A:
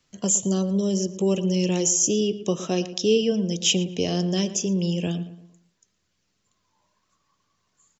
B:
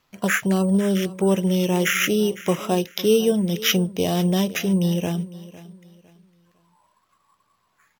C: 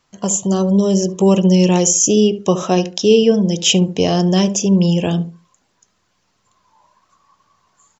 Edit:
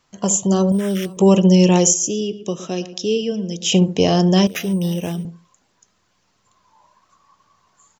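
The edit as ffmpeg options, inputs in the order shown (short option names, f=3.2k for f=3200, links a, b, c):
-filter_complex "[1:a]asplit=2[a][b];[2:a]asplit=4[c][d][e][f];[c]atrim=end=0.722[g];[a]atrim=start=0.718:end=1.172[h];[d]atrim=start=1.168:end=1.942[i];[0:a]atrim=start=1.938:end=3.722[j];[e]atrim=start=3.718:end=4.472[k];[b]atrim=start=4.468:end=5.252[l];[f]atrim=start=5.248[m];[g][h]acrossfade=d=0.004:c1=hsin:c2=hsin[n];[n][i]acrossfade=d=0.004:c1=hsin:c2=hsin[o];[o][j]acrossfade=d=0.004:c1=hsin:c2=hsin[p];[p][k]acrossfade=d=0.004:c1=hsin:c2=hsin[q];[q][l]acrossfade=d=0.004:c1=hsin:c2=hsin[r];[r][m]acrossfade=d=0.004:c1=hsin:c2=hsin"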